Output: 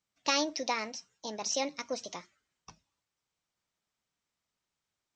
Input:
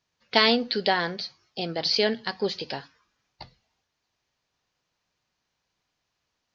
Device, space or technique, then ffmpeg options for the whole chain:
nightcore: -af "asetrate=56007,aresample=44100,volume=-8.5dB"

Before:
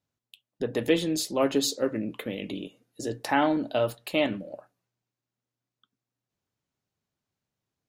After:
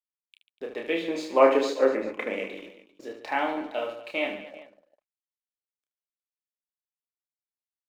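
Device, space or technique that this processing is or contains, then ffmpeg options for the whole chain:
pocket radio on a weak battery: -filter_complex "[0:a]highpass=380,lowpass=3.4k,aeval=exprs='sgn(val(0))*max(abs(val(0))-0.00237,0)':c=same,equalizer=f=2.3k:t=o:w=0.21:g=9,asettb=1/sr,asplit=3[a][b][c];[a]atrim=end=1.084[d];[b]atrim=start=1.08:end=2.47,asetpts=PTS-STARTPTS,afade=t=in:d=0.004:c=qsin,afade=t=out:st=1.386:d=0.004:c=qsin,equalizer=f=250:t=o:w=1:g=6,equalizer=f=500:t=o:w=1:g=8,equalizer=f=1k:t=o:w=1:g=10,equalizer=f=2k:t=o:w=1:g=7,equalizer=f=4k:t=o:w=1:g=-3,equalizer=f=8k:t=o:w=1:g=4[e];[c]atrim=start=2.466[f];[d][e]acrossfade=d=0.004:c1=hsin:c2=qsin[g];[g][f]acrossfade=d=0.004:c1=qsin:c2=hsin,aecho=1:1:30|75|142.5|243.8|395.6:0.631|0.398|0.251|0.158|0.1,volume=-4dB"

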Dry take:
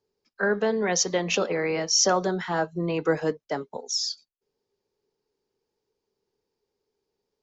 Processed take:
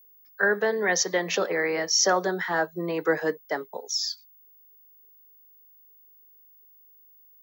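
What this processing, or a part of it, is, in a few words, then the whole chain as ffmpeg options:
old television with a line whistle: -af "highpass=f=190:w=0.5412,highpass=f=190:w=1.3066,equalizer=f=240:t=q:w=4:g=-9,equalizer=f=1.8k:t=q:w=4:g=9,equalizer=f=2.7k:t=q:w=4:g=-6,lowpass=f=6.9k:w=0.5412,lowpass=f=6.9k:w=1.3066,aeval=exprs='val(0)+0.00224*sin(2*PI*15625*n/s)':c=same"

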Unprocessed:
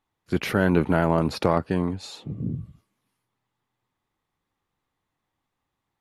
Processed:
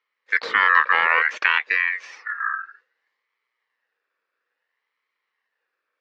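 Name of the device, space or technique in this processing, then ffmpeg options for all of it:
voice changer toy: -af "aeval=exprs='val(0)*sin(2*PI*1800*n/s+1800*0.2/0.59*sin(2*PI*0.59*n/s))':c=same,highpass=430,equalizer=f=480:t=q:w=4:g=9,equalizer=f=680:t=q:w=4:g=-6,equalizer=f=1.1k:t=q:w=4:g=5,equalizer=f=1.8k:t=q:w=4:g=6,equalizer=f=3.3k:t=q:w=4:g=-4,lowpass=f=4.9k:w=0.5412,lowpass=f=4.9k:w=1.3066,volume=2.5dB"

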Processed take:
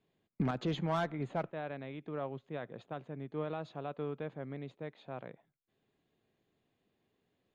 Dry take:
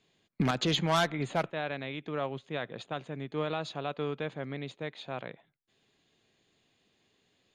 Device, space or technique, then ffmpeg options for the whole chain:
through cloth: -af "highshelf=f=2.4k:g=-17,volume=-4dB"

